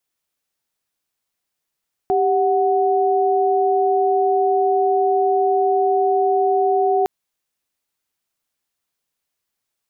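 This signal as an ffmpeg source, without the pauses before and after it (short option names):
-f lavfi -i "aevalsrc='0.141*(sin(2*PI*392*t)+sin(2*PI*739.99*t))':d=4.96:s=44100"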